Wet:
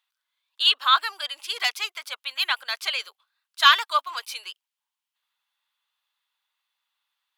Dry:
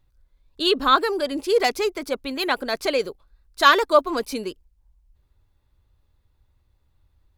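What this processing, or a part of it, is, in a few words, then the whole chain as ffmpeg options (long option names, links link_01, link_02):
headphones lying on a table: -af "highpass=frequency=1000:width=0.5412,highpass=frequency=1000:width=1.3066,equalizer=frequency=3100:width_type=o:width=0.56:gain=8.5,volume=-1.5dB"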